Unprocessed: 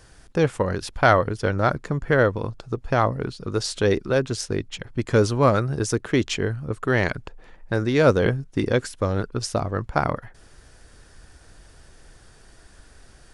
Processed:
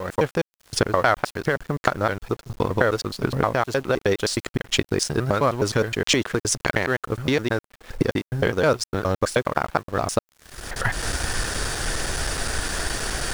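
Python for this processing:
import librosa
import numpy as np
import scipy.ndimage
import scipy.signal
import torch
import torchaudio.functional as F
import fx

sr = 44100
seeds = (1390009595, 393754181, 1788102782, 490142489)

y = fx.block_reorder(x, sr, ms=104.0, group=7)
y = fx.recorder_agc(y, sr, target_db=-6.5, rise_db_per_s=40.0, max_gain_db=30)
y = fx.low_shelf(y, sr, hz=390.0, db=-7.0)
y = np.sign(y) * np.maximum(np.abs(y) - 10.0 ** (-36.5 / 20.0), 0.0)
y = fx.quant_dither(y, sr, seeds[0], bits=8, dither='none')
y = y * 10.0 ** (-1.0 / 20.0)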